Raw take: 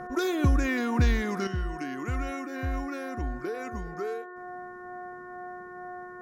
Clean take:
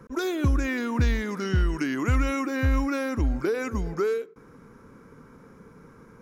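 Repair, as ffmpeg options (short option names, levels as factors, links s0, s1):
-af "bandreject=f=361.1:t=h:w=4,bandreject=f=722.2:t=h:w=4,bandreject=f=1083.3:t=h:w=4,bandreject=f=1444.4:t=h:w=4,bandreject=f=1805.5:t=h:w=4,bandreject=f=720:w=30,asetnsamples=n=441:p=0,asendcmd='1.47 volume volume 8.5dB',volume=1"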